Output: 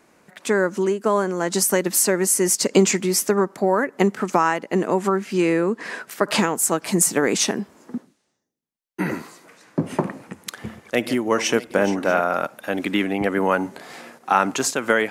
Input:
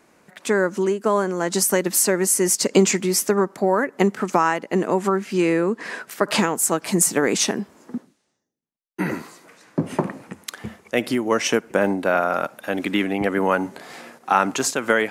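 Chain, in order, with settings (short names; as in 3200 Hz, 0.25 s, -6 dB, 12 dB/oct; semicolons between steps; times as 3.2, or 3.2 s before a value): 10.08–12.21 regenerating reverse delay 0.319 s, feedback 49%, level -12.5 dB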